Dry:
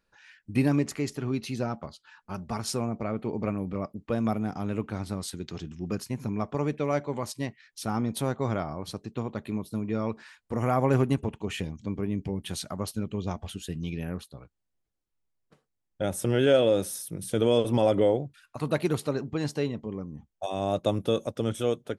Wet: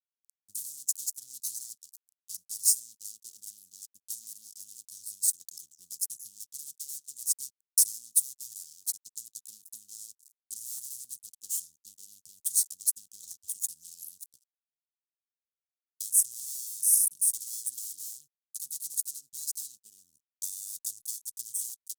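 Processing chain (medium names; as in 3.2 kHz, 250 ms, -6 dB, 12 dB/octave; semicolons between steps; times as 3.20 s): fuzz box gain 36 dB, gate -43 dBFS; transient shaper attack +10 dB, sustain -3 dB; inverse Chebyshev high-pass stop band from 2.3 kHz, stop band 60 dB; trim -1.5 dB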